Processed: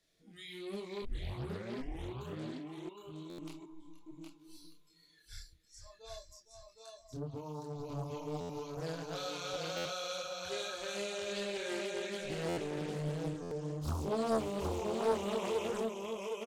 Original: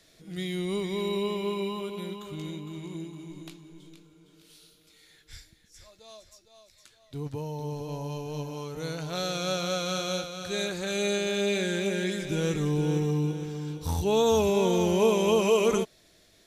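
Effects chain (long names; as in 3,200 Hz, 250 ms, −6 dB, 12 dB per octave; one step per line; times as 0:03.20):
downward compressor 2 to 1, threshold −42 dBFS, peak gain reduction 13 dB
noise reduction from a noise print of the clip's start 15 dB
0:01.02: tape start 1.17 s
multi-voice chorus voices 6, 0.6 Hz, delay 27 ms, depth 4.5 ms
0:02.89–0:03.30: resonant band-pass 970 Hz, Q 5
single-tap delay 765 ms −4 dB
buffer that repeats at 0:03.29/0:08.40/0:09.76/0:12.48/0:13.42, samples 512, times 7
highs frequency-modulated by the lows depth 0.91 ms
level +2 dB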